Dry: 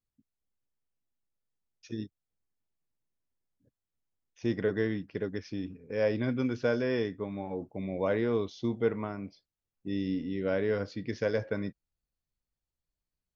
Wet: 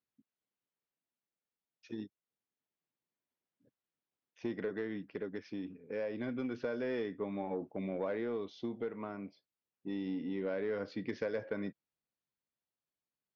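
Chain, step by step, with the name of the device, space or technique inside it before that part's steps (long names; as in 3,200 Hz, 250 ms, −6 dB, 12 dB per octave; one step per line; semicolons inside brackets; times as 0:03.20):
AM radio (band-pass filter 190–3,600 Hz; downward compressor, threshold −32 dBFS, peak gain reduction 10 dB; soft clipping −26 dBFS, distortion −22 dB; amplitude tremolo 0.27 Hz, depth 30%)
level +1 dB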